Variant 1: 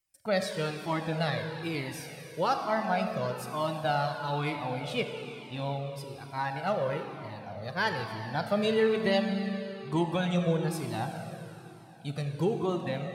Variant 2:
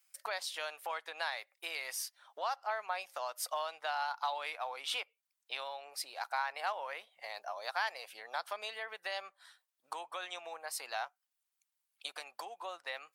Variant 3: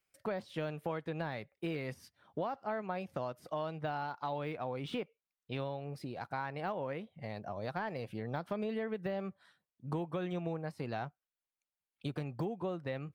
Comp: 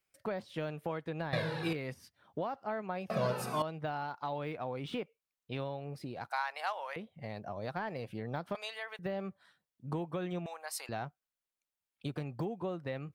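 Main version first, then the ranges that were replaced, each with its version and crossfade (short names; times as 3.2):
3
1.33–1.73 from 1
3.1–3.62 from 1
6.3–6.96 from 2
8.55–8.99 from 2
10.46–10.89 from 2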